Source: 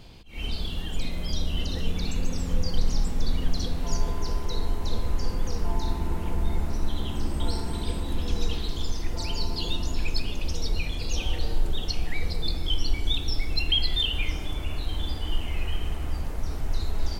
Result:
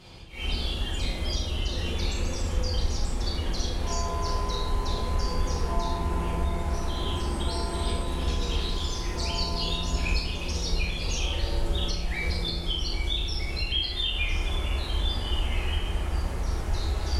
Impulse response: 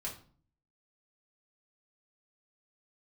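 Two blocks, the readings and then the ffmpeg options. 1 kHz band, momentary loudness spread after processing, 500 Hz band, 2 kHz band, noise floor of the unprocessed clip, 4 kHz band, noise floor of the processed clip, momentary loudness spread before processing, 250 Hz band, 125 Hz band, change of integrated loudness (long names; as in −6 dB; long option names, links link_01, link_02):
+5.5 dB, 3 LU, +3.0 dB, +3.5 dB, −32 dBFS, +0.5 dB, −32 dBFS, 5 LU, −0.5 dB, +1.5 dB, +1.0 dB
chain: -filter_complex "[0:a]highpass=43,equalizer=frequency=130:width=0.39:gain=-5,alimiter=limit=-23.5dB:level=0:latency=1:release=321[link_01];[1:a]atrim=start_sample=2205,asetrate=23814,aresample=44100[link_02];[link_01][link_02]afir=irnorm=-1:irlink=0,volume=1dB"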